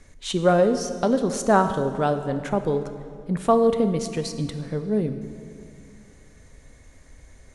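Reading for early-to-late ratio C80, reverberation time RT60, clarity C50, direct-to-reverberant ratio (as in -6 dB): 11.0 dB, 2.4 s, 10.0 dB, 9.0 dB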